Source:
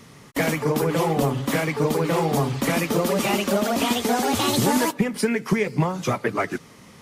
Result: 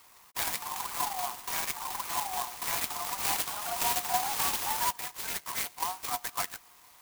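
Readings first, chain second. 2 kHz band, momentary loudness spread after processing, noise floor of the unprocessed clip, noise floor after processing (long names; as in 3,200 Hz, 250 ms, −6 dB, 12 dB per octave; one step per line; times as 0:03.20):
−9.5 dB, 6 LU, −48 dBFS, −57 dBFS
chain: Chebyshev high-pass with heavy ripple 700 Hz, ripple 9 dB
converter with an unsteady clock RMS 0.11 ms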